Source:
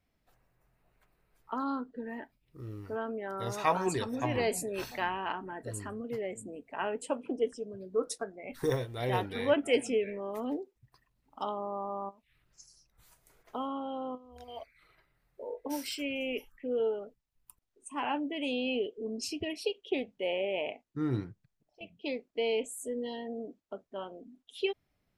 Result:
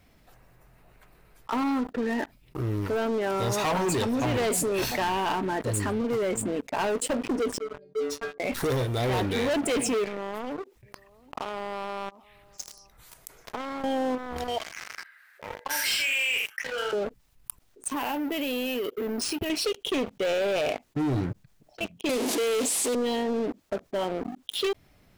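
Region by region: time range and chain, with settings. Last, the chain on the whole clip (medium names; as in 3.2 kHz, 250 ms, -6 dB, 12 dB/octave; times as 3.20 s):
7.58–8.40 s: low-pass 4.8 kHz + inharmonic resonator 140 Hz, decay 0.52 s, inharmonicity 0.008
10.04–13.84 s: tone controls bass -4 dB, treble -1 dB + compression 20:1, threshold -47 dBFS + delay 787 ms -21 dB
14.58–16.93 s: resonant high-pass 1.6 kHz, resonance Q 6.4 + multi-tap echo 47/82 ms -8.5/-9 dB
17.88–19.50 s: compression 5:1, threshold -43 dBFS + careless resampling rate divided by 3×, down none, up hold
22.09–22.95 s: one-bit delta coder 64 kbps, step -33 dBFS + steep high-pass 210 Hz 48 dB/octave + peaking EQ 1.5 kHz -8 dB 0.83 oct
whole clip: dynamic bell 1.3 kHz, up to -4 dB, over -48 dBFS, Q 1.4; waveshaping leveller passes 5; level flattener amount 50%; trim -8 dB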